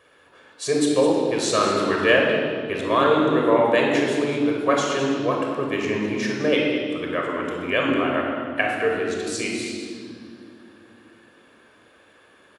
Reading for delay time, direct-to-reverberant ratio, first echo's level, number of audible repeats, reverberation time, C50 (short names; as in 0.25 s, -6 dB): 0.208 s, -1.5 dB, -11.0 dB, 1, 2.4 s, 0.5 dB